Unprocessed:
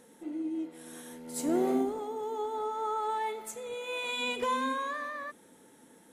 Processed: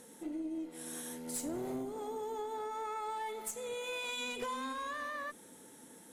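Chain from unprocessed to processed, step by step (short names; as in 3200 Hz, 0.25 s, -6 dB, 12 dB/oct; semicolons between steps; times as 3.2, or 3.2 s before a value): tone controls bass +1 dB, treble +6 dB; tube stage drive 22 dB, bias 0.55; compressor 5:1, threshold -40 dBFS, peak gain reduction 12 dB; gain +3 dB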